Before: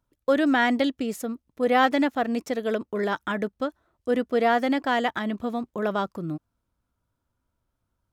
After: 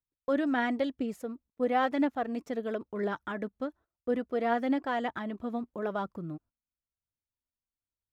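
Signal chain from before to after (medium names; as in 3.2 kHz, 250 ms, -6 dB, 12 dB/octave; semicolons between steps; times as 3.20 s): gate -47 dBFS, range -18 dB; treble shelf 2.6 kHz -10 dB; phaser 0.98 Hz, delay 4.9 ms, feedback 31%; trim -6.5 dB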